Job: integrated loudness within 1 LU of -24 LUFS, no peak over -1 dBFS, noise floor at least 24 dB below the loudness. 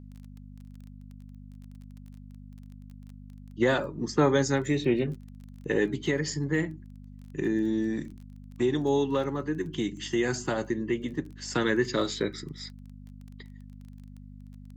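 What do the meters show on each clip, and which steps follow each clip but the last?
ticks 19/s; hum 50 Hz; harmonics up to 250 Hz; hum level -44 dBFS; loudness -28.5 LUFS; peak -11.5 dBFS; loudness target -24.0 LUFS
-> de-click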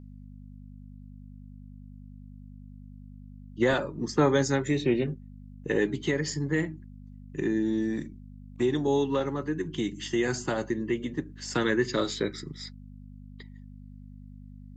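ticks 0/s; hum 50 Hz; harmonics up to 250 Hz; hum level -44 dBFS
-> de-hum 50 Hz, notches 5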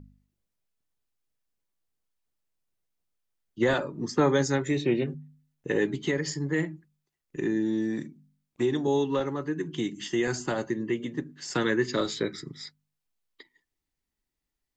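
hum none; loudness -28.5 LUFS; peak -11.0 dBFS; loudness target -24.0 LUFS
-> gain +4.5 dB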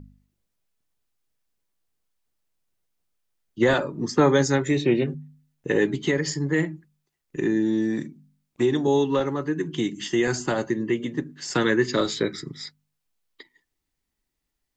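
loudness -24.0 LUFS; peak -6.5 dBFS; noise floor -80 dBFS

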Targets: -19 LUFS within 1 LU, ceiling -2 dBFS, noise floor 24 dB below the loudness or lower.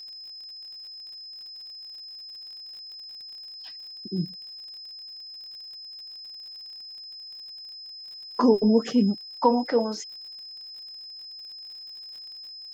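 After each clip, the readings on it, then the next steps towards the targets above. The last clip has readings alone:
ticks 51/s; steady tone 5100 Hz; tone level -39 dBFS; loudness -30.5 LUFS; peak -8.0 dBFS; loudness target -19.0 LUFS
-> de-click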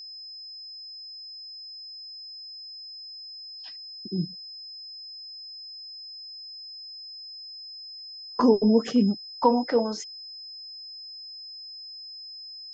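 ticks 0.079/s; steady tone 5100 Hz; tone level -39 dBFS
-> notch 5100 Hz, Q 30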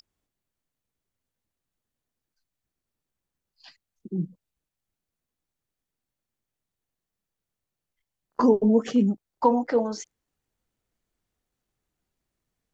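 steady tone none; loudness -24.0 LUFS; peak -8.0 dBFS; loudness target -19.0 LUFS
-> gain +5 dB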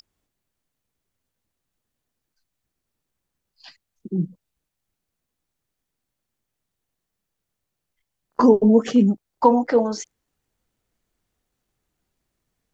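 loudness -19.0 LUFS; peak -3.0 dBFS; noise floor -82 dBFS

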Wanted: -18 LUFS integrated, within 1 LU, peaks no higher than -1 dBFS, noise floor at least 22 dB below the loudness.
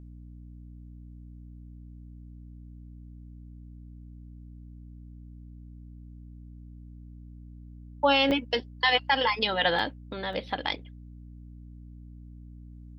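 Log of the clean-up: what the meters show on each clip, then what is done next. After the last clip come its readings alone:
dropouts 3; longest dropout 2.0 ms; hum 60 Hz; harmonics up to 300 Hz; hum level -43 dBFS; loudness -26.5 LUFS; peak -9.5 dBFS; loudness target -18.0 LUFS
-> interpolate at 8.31/9.79/10.33, 2 ms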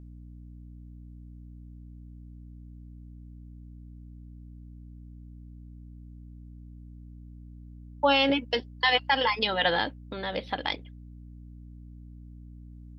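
dropouts 0; hum 60 Hz; harmonics up to 300 Hz; hum level -43 dBFS
-> de-hum 60 Hz, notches 5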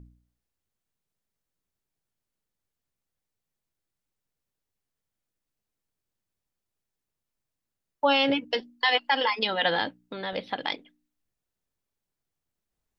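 hum none; loudness -26.0 LUFS; peak -9.5 dBFS; loudness target -18.0 LUFS
-> gain +8 dB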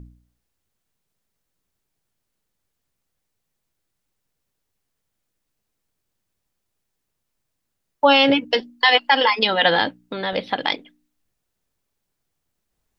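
loudness -18.0 LUFS; peak -1.5 dBFS; noise floor -78 dBFS

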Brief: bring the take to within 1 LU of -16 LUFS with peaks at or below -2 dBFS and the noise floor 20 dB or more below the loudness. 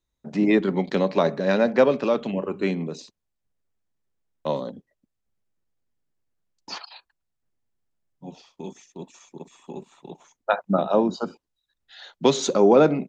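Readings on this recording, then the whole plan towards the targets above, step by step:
loudness -22.5 LUFS; peak -5.0 dBFS; loudness target -16.0 LUFS
-> gain +6.5 dB; limiter -2 dBFS

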